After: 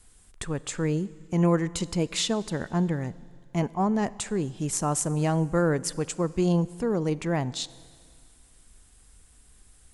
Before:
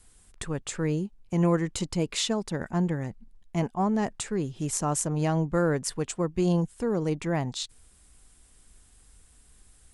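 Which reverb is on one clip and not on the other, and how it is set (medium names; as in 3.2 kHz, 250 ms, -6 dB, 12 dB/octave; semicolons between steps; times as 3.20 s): Schroeder reverb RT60 2.1 s, combs from 31 ms, DRR 19 dB; trim +1 dB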